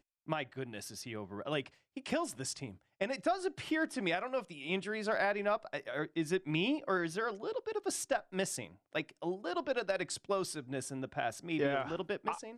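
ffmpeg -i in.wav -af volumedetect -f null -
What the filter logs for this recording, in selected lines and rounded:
mean_volume: -36.8 dB
max_volume: -18.6 dB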